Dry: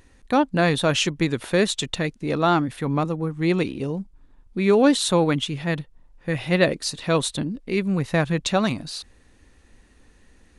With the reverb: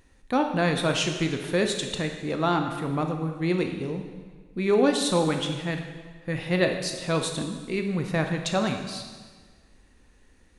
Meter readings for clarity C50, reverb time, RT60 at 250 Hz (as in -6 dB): 6.0 dB, 1.5 s, 1.5 s